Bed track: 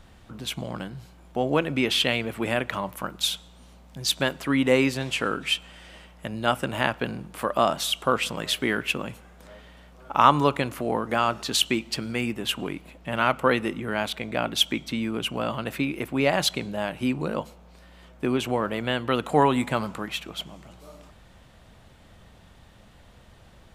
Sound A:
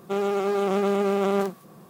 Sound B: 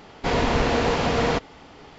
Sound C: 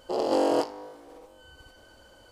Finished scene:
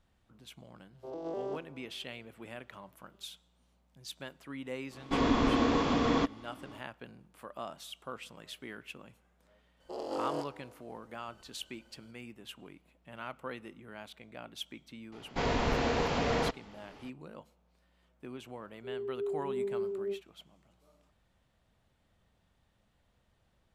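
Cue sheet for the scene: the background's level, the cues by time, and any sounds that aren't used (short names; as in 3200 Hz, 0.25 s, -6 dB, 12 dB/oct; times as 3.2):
bed track -20 dB
0.93 add C -13.5 dB + arpeggiated vocoder major triad, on C3, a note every 0.2 s
4.87 add B -10 dB, fades 0.10 s + small resonant body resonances 280/1100/3400 Hz, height 13 dB
9.8 add C -12.5 dB
15.12 add B -8.5 dB
18.73 add A -14 dB + spectral expander 4:1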